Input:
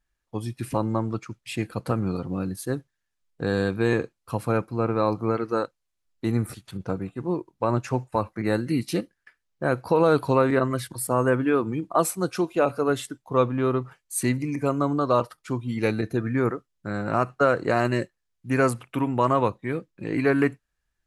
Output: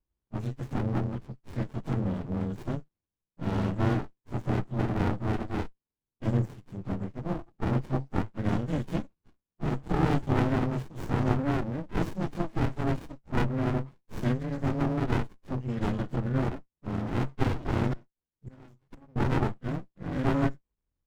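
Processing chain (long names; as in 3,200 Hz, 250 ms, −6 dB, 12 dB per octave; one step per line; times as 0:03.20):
partials spread apart or drawn together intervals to 90%
0:17.93–0:19.16: gate with flip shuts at −30 dBFS, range −26 dB
windowed peak hold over 65 samples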